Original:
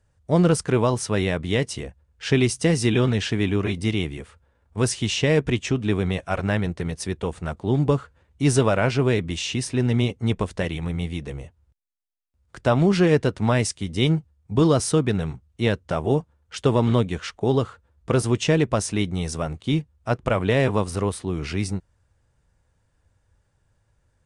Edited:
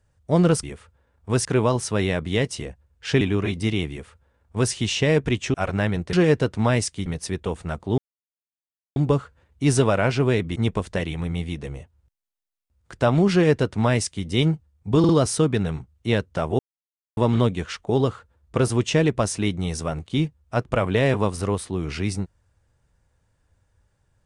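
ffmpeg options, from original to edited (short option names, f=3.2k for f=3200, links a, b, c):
-filter_complex "[0:a]asplit=13[a][b][c][d][e][f][g][h][i][j][k][l][m];[a]atrim=end=0.632[n];[b]atrim=start=4.108:end=4.932[o];[c]atrim=start=0.628:end=2.392[p];[d]atrim=start=3.418:end=5.752[q];[e]atrim=start=6.238:end=6.832[r];[f]atrim=start=12.958:end=13.892[s];[g]atrim=start=6.828:end=7.75,asetpts=PTS-STARTPTS,afade=t=out:st=0.918:d=0.004:c=hsin,apad=pad_dur=0.98[t];[h]atrim=start=7.75:end=9.352,asetpts=PTS-STARTPTS,afade=t=in:d=0.004:c=hsin[u];[i]atrim=start=10.198:end=14.682[v];[j]atrim=start=14.628:end=14.682[w];[k]atrim=start=14.628:end=16.13,asetpts=PTS-STARTPTS,afade=t=out:st=1.498:d=0.004:c=hsin[x];[l]atrim=start=16.13:end=16.71,asetpts=PTS-STARTPTS,volume=0[y];[m]atrim=start=16.71,asetpts=PTS-STARTPTS,afade=t=in:d=0.004:c=hsin[z];[n][o]acrossfade=d=0.004:c1=hsin:c2=hsin[aa];[aa][p]acrossfade=d=0.004:c1=hsin:c2=hsin[ab];[ab][q]acrossfade=d=0.004:c1=hsin:c2=hsin[ac];[ac][r]acrossfade=d=0.004:c1=hsin:c2=hsin[ad];[ad][s]acrossfade=d=0.004:c1=hsin:c2=hsin[ae];[t][u]concat=n=2:v=0:a=1[af];[ae][af]acrossfade=d=0.004:c1=hsin:c2=hsin[ag];[ag][v]acrossfade=d=0.004:c1=hsin:c2=hsin[ah];[ah][w]acrossfade=d=0.004:c1=hsin:c2=hsin[ai];[x][y][z]concat=n=3:v=0:a=1[aj];[ai][aj]acrossfade=d=0.004:c1=hsin:c2=hsin"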